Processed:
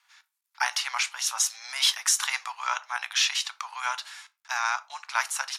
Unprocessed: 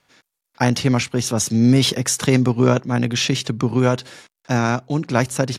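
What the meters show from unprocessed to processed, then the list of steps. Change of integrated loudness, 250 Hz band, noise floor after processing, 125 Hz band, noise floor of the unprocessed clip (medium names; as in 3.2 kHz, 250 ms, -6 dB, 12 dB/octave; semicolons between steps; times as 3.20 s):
-8.0 dB, under -40 dB, -82 dBFS, under -40 dB, -81 dBFS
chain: steep high-pass 870 Hz 48 dB/octave; simulated room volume 150 m³, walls furnished, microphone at 0.36 m; trim -2 dB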